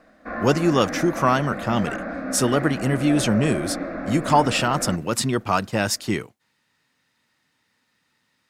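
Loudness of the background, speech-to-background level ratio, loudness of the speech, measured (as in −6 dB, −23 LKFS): −30.5 LKFS, 8.5 dB, −22.0 LKFS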